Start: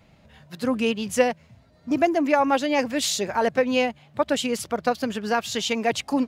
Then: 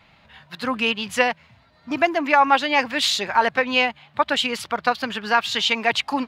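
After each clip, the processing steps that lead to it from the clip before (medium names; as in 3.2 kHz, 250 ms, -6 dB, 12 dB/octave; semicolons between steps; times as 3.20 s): high-order bell 1.9 kHz +11.5 dB 2.8 oct; trim -3.5 dB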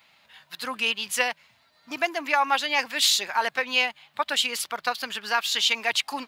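RIAA curve recording; trim -6.5 dB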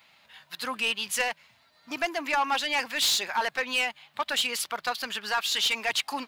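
saturation -19 dBFS, distortion -12 dB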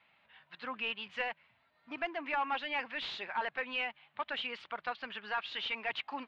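low-pass 3 kHz 24 dB/octave; trim -7.5 dB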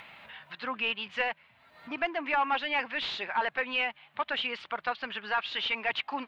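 upward compressor, threshold -45 dBFS; trim +6 dB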